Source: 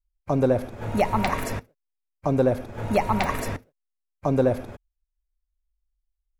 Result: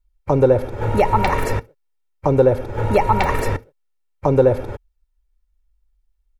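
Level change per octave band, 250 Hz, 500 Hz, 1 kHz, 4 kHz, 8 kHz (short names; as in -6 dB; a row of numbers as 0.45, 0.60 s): +2.5, +7.5, +7.0, +3.0, +1.5 dB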